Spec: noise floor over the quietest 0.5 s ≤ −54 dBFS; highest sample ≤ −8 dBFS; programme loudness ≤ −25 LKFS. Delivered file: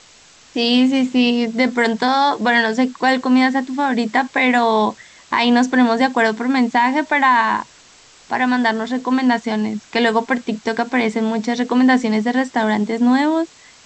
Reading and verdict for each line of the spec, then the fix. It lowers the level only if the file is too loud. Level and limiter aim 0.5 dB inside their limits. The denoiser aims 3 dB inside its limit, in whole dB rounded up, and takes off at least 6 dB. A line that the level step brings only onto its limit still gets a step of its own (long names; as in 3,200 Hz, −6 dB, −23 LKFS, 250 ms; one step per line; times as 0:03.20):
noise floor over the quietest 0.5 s −47 dBFS: out of spec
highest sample −4.5 dBFS: out of spec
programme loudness −17.0 LKFS: out of spec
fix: level −8.5 dB